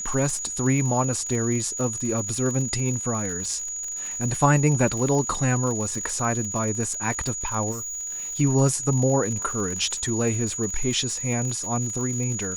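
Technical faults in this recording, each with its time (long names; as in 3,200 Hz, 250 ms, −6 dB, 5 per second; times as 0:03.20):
surface crackle 89 per second −30 dBFS
whistle 6,800 Hz −29 dBFS
0:07.71–0:08.39: clipping −29.5 dBFS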